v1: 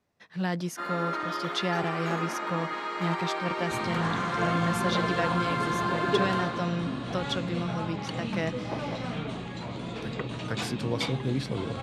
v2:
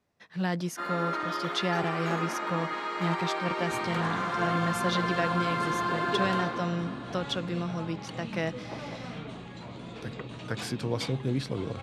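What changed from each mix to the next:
second sound −6.0 dB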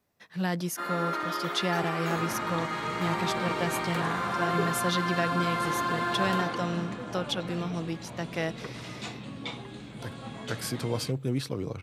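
second sound: entry −1.55 s
master: remove high-frequency loss of the air 51 metres

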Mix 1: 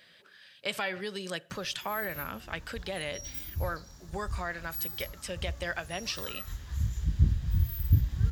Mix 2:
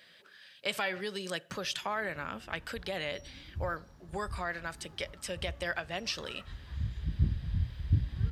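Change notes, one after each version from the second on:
background: add head-to-tape spacing loss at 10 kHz 30 dB
master: add low-shelf EQ 90 Hz −8 dB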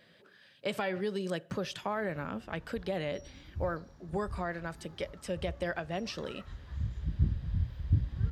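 speech: add tilt shelving filter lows +7.5 dB, about 890 Hz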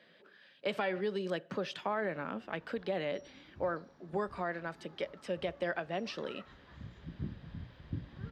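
master: add three-way crossover with the lows and the highs turned down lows −20 dB, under 170 Hz, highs −14 dB, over 4,800 Hz

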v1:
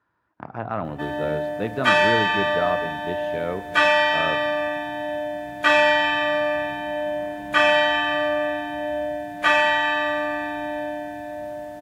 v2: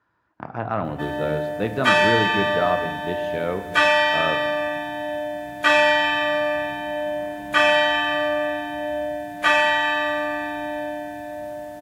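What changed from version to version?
speech: send +7.0 dB
master: add high-shelf EQ 5,700 Hz +5 dB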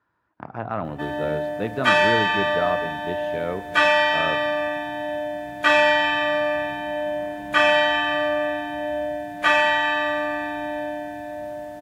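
speech: send −7.5 dB
master: add high-shelf EQ 5,700 Hz −5 dB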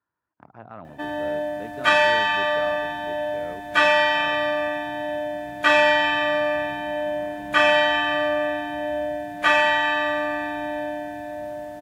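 speech −10.5 dB
reverb: off

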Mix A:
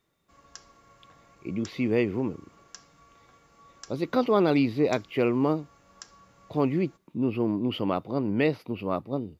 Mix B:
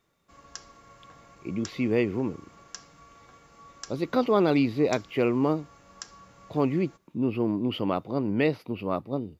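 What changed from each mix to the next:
background +4.5 dB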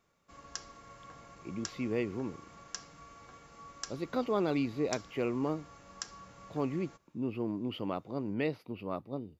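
speech −8.5 dB

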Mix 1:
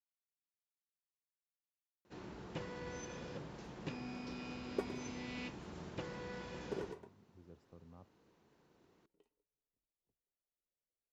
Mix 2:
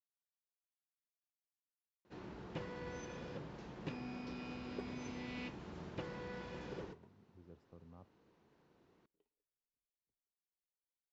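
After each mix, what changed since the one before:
second sound −8.5 dB
master: add high-frequency loss of the air 89 metres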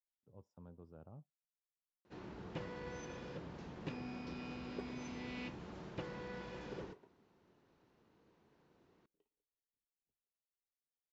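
speech: entry −2.25 s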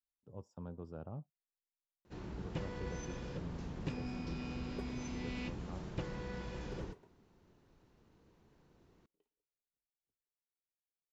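speech +9.5 dB
first sound: remove high-pass filter 260 Hz 6 dB per octave
master: remove high-frequency loss of the air 89 metres

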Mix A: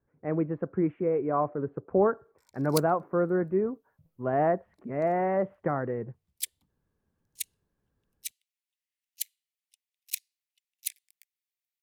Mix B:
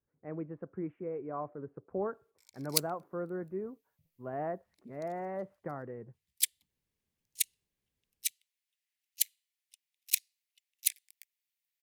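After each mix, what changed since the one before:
speech −11.5 dB
background +4.5 dB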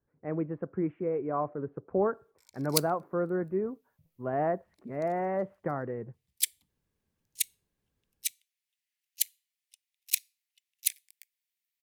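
speech +7.0 dB
reverb: on, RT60 0.35 s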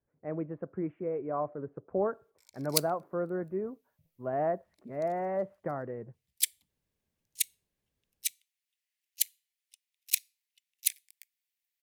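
speech −4.0 dB
master: add parametric band 620 Hz +5 dB 0.4 octaves

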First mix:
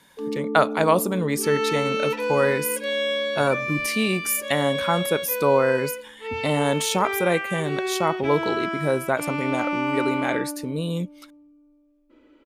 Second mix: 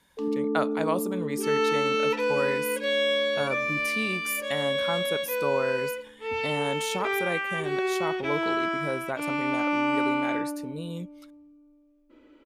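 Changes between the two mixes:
speech −9.0 dB
first sound: send +11.5 dB

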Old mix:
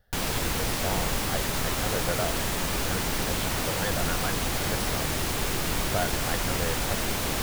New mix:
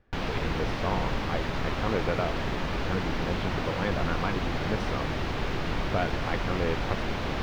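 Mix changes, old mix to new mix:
speech: remove phaser with its sweep stopped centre 1,600 Hz, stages 8
master: add high-frequency loss of the air 250 metres

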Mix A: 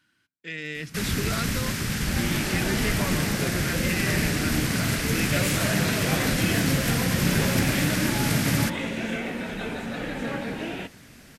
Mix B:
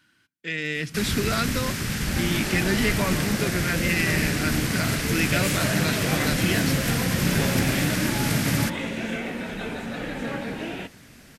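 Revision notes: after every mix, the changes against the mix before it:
speech +5.5 dB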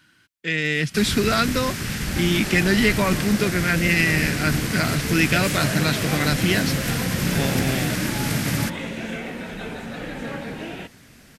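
speech +6.5 dB
reverb: off

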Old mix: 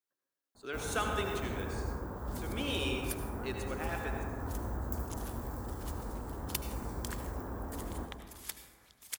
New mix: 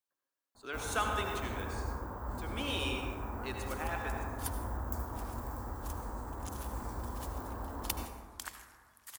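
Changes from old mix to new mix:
second sound: entry +1.35 s
master: add graphic EQ with 15 bands 160 Hz −7 dB, 400 Hz −4 dB, 1,000 Hz +4 dB

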